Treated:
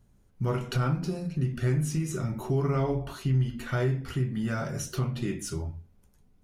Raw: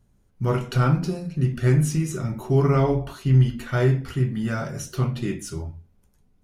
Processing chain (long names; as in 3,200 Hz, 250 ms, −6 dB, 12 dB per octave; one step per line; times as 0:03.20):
downward compressor 2 to 1, threshold −29 dBFS, peak gain reduction 9 dB